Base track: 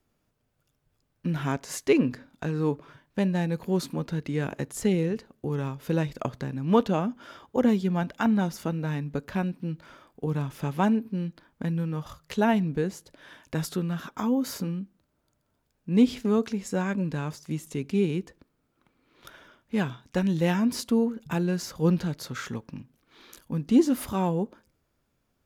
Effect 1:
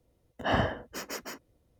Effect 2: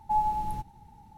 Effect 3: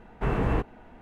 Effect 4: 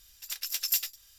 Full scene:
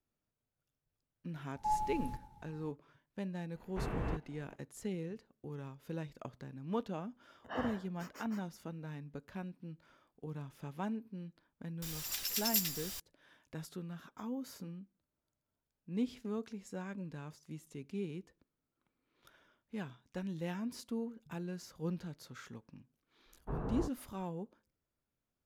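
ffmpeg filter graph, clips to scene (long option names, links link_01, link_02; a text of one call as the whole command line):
ffmpeg -i bed.wav -i cue0.wav -i cue1.wav -i cue2.wav -i cue3.wav -filter_complex "[3:a]asplit=2[link_01][link_02];[0:a]volume=-15.5dB[link_03];[2:a]aecho=1:1:111:0.188[link_04];[1:a]equalizer=frequency=1200:width=1.4:gain=7.5[link_05];[4:a]aeval=exprs='val(0)+0.5*0.0224*sgn(val(0))':channel_layout=same[link_06];[link_02]afwtdn=0.0224[link_07];[link_04]atrim=end=1.17,asetpts=PTS-STARTPTS,volume=-7.5dB,afade=type=in:duration=0.004:curve=hsin,afade=type=out:start_time=1.166:duration=0.004:curve=hsin,adelay=1550[link_08];[link_01]atrim=end=1.01,asetpts=PTS-STARTPTS,volume=-12dB,afade=type=in:duration=0.004:curve=hsin,afade=type=out:start_time=1.006:duration=0.004:curve=hsin,adelay=3550[link_09];[link_05]atrim=end=1.79,asetpts=PTS-STARTPTS,volume=-17dB,afade=type=in:duration=0.004:curve=hsin,afade=type=out:start_time=1.786:duration=0.004:curve=hsin,adelay=7050[link_10];[link_06]atrim=end=1.18,asetpts=PTS-STARTPTS,volume=-6dB,afade=type=in:duration=0.004:curve=hsin,afade=type=out:start_time=1.176:duration=0.004:curve=hsin,adelay=11820[link_11];[link_07]atrim=end=1.01,asetpts=PTS-STARTPTS,volume=-13dB,afade=type=in:duration=0.004:curve=hsin,afade=type=out:start_time=1.006:duration=0.004:curve=hsin,adelay=23260[link_12];[link_03][link_08][link_09][link_10][link_11][link_12]amix=inputs=6:normalize=0" out.wav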